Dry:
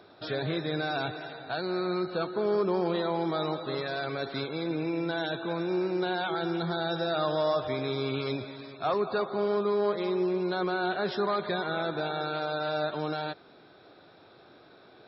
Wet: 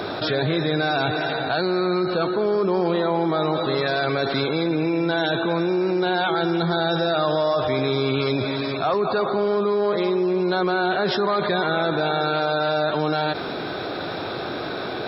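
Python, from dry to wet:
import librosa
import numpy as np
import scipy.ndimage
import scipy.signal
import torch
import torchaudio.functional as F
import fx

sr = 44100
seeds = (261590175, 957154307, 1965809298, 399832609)

y = fx.bessel_lowpass(x, sr, hz=3500.0, order=2, at=(2.94, 3.55))
y = fx.env_flatten(y, sr, amount_pct=70)
y = F.gain(torch.from_numpy(y), 4.5).numpy()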